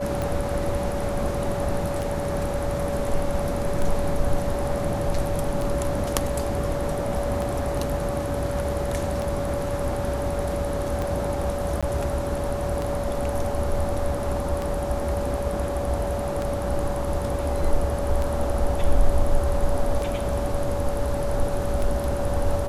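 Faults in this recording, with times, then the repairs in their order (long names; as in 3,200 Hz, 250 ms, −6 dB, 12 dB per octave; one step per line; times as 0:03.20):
scratch tick 33 1/3 rpm
whistle 570 Hz −28 dBFS
0:11.81–0:11.83: drop-out 16 ms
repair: click removal
notch filter 570 Hz, Q 30
repair the gap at 0:11.81, 16 ms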